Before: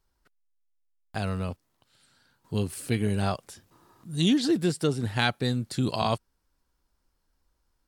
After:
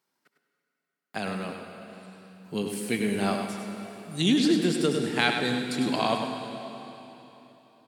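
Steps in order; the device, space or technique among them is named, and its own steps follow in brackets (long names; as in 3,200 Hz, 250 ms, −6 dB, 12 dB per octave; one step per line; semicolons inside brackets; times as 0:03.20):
PA in a hall (high-pass filter 170 Hz 24 dB per octave; parametric band 2,200 Hz +5 dB 0.52 octaves; single-tap delay 101 ms −7.5 dB; convolution reverb RT60 3.5 s, pre-delay 59 ms, DRR 6 dB)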